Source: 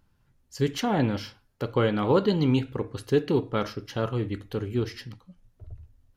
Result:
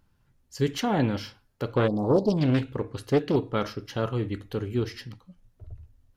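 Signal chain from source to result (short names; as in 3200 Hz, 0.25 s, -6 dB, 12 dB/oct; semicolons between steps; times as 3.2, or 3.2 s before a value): 1.87–2.37 spectral delete 960–4200 Hz; 1.68–3.36 Doppler distortion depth 0.42 ms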